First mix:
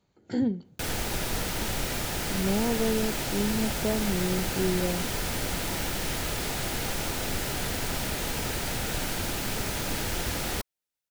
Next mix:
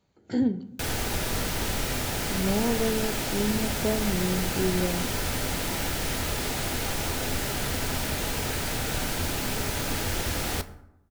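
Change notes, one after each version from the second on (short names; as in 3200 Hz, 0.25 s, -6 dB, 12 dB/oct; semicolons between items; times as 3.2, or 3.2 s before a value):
reverb: on, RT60 0.85 s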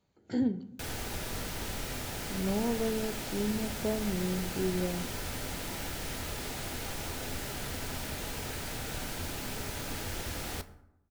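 speech -4.5 dB; background -8.5 dB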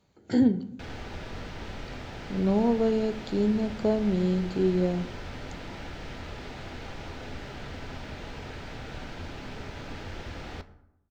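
speech +7.5 dB; background: add air absorption 190 m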